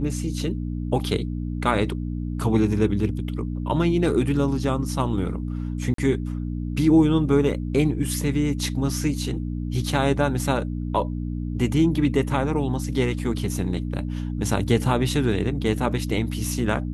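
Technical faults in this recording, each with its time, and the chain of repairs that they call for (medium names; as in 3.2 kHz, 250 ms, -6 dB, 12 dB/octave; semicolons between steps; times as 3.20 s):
hum 60 Hz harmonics 5 -28 dBFS
5.94–5.98 s: dropout 43 ms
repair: de-hum 60 Hz, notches 5; interpolate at 5.94 s, 43 ms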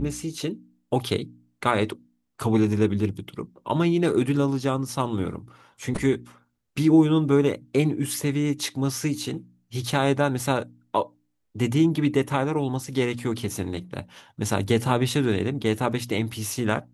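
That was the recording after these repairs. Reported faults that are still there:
nothing left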